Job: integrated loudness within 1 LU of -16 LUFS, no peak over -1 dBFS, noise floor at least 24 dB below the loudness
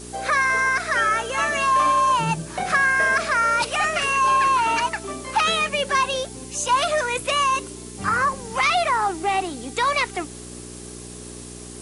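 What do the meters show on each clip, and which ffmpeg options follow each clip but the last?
hum 60 Hz; highest harmonic 420 Hz; hum level -38 dBFS; noise floor -38 dBFS; noise floor target -45 dBFS; loudness -20.5 LUFS; peak level -8.5 dBFS; loudness target -16.0 LUFS
-> -af "bandreject=f=60:t=h:w=4,bandreject=f=120:t=h:w=4,bandreject=f=180:t=h:w=4,bandreject=f=240:t=h:w=4,bandreject=f=300:t=h:w=4,bandreject=f=360:t=h:w=4,bandreject=f=420:t=h:w=4"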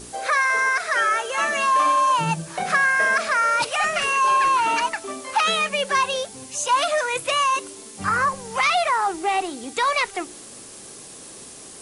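hum not found; noise floor -41 dBFS; noise floor target -45 dBFS
-> -af "afftdn=nr=6:nf=-41"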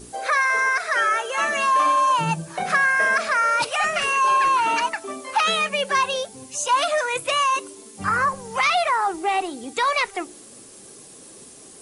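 noise floor -45 dBFS; loudness -21.0 LUFS; peak level -9.0 dBFS; loudness target -16.0 LUFS
-> -af "volume=1.78"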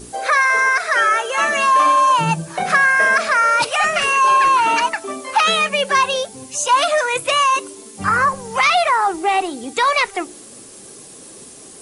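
loudness -16.0 LUFS; peak level -4.0 dBFS; noise floor -40 dBFS

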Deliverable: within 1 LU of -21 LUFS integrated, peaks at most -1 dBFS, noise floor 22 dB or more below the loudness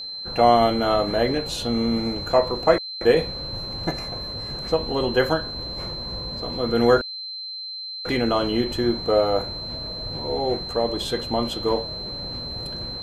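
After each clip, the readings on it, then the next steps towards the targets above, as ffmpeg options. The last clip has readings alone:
steady tone 4.1 kHz; tone level -31 dBFS; loudness -23.5 LUFS; peak level -3.0 dBFS; loudness target -21.0 LUFS
-> -af "bandreject=f=4100:w=30"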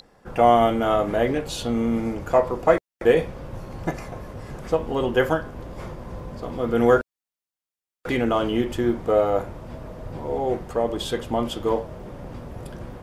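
steady tone not found; loudness -23.0 LUFS; peak level -3.5 dBFS; loudness target -21.0 LUFS
-> -af "volume=1.26"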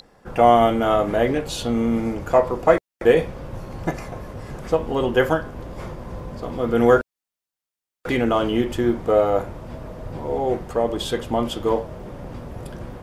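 loudness -21.0 LUFS; peak level -1.5 dBFS; noise floor -89 dBFS

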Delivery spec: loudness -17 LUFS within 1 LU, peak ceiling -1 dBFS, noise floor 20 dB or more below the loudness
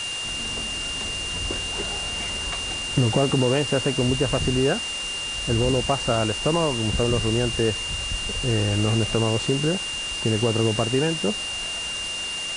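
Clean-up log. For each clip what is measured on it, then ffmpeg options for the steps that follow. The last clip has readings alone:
steady tone 2.8 kHz; tone level -28 dBFS; noise floor -30 dBFS; noise floor target -44 dBFS; loudness -23.5 LUFS; peak level -8.0 dBFS; loudness target -17.0 LUFS
-> -af "bandreject=f=2800:w=30"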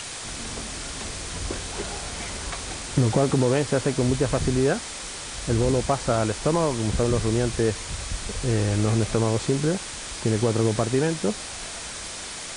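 steady tone not found; noise floor -35 dBFS; noise floor target -45 dBFS
-> -af "afftdn=nr=10:nf=-35"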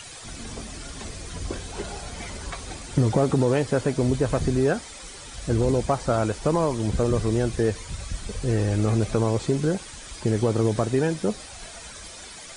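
noise floor -41 dBFS; noise floor target -45 dBFS
-> -af "afftdn=nr=6:nf=-41"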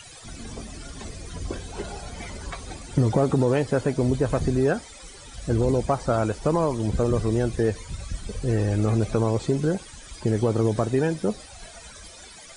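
noise floor -45 dBFS; loudness -24.5 LUFS; peak level -9.0 dBFS; loudness target -17.0 LUFS
-> -af "volume=2.37"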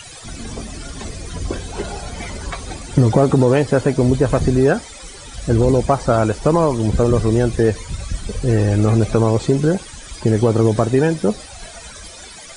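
loudness -17.0 LUFS; peak level -1.5 dBFS; noise floor -37 dBFS

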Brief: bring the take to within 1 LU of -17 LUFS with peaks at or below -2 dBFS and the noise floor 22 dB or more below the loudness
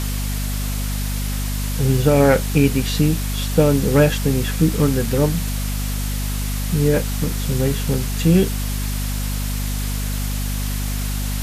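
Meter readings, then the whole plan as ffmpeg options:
hum 50 Hz; highest harmonic 250 Hz; hum level -21 dBFS; noise floor -23 dBFS; noise floor target -42 dBFS; loudness -20.0 LUFS; peak level -1.5 dBFS; loudness target -17.0 LUFS
-> -af "bandreject=f=50:t=h:w=4,bandreject=f=100:t=h:w=4,bandreject=f=150:t=h:w=4,bandreject=f=200:t=h:w=4,bandreject=f=250:t=h:w=4"
-af "afftdn=nr=19:nf=-23"
-af "volume=1.41,alimiter=limit=0.794:level=0:latency=1"

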